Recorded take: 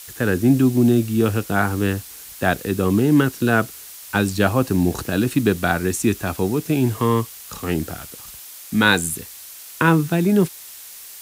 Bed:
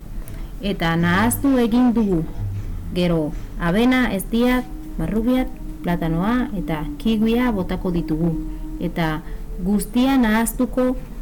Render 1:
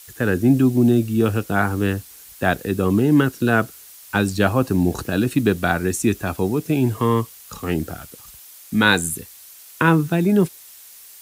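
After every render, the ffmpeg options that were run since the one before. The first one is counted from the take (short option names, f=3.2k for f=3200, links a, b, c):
-af "afftdn=nr=6:nf=-39"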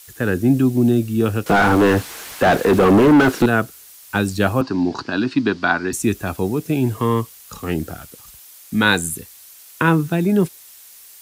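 -filter_complex "[0:a]asettb=1/sr,asplit=3[a][b][c];[a]atrim=end=1.464[d];[b]atrim=start=1.46:end=3.46,asetpts=PTS-STARTPTS,afade=t=in:d=0.004:c=qsin,afade=t=out:st=1.996:d=0.004:c=qsin,asplit=2[e][f];[f]highpass=f=720:p=1,volume=33dB,asoftclip=type=tanh:threshold=-4dB[g];[e][g]amix=inputs=2:normalize=0,lowpass=f=1k:p=1,volume=-6dB[h];[c]atrim=start=3.456[i];[d][h]acrossfade=d=0.004:c1=hsin:c2=qsin[j];[j][i]acrossfade=d=0.004:c1=qsin:c2=hsin,asettb=1/sr,asplit=3[k][l][m];[k]atrim=end=4.614[n];[l]atrim=start=4.61:end=5.93,asetpts=PTS-STARTPTS,afade=t=in:d=0.004:c=qsin,afade=t=out:st=1.316:d=0.004:c=qsin,highpass=170,equalizer=f=180:t=q:w=4:g=-5,equalizer=f=260:t=q:w=4:g=4,equalizer=f=500:t=q:w=4:g=-8,equalizer=f=990:t=q:w=4:g=9,equalizer=f=1.5k:t=q:w=4:g=4,equalizer=f=4.7k:t=q:w=4:g=10,lowpass=f=5.3k:w=0.5412,lowpass=f=5.3k:w=1.3066[o];[m]atrim=start=5.926[p];[n][o]acrossfade=d=0.004:c1=hsin:c2=qsin[q];[q][p]acrossfade=d=0.004:c1=qsin:c2=hsin"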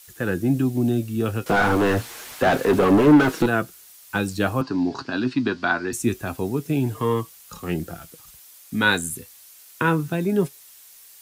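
-af "flanger=delay=5.4:depth=3.3:regen=59:speed=0.26:shape=triangular"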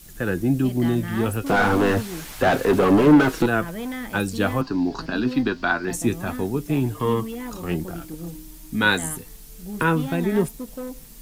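-filter_complex "[1:a]volume=-14.5dB[a];[0:a][a]amix=inputs=2:normalize=0"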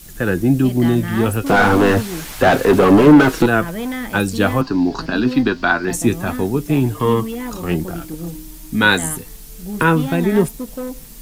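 -af "volume=6dB,alimiter=limit=-1dB:level=0:latency=1"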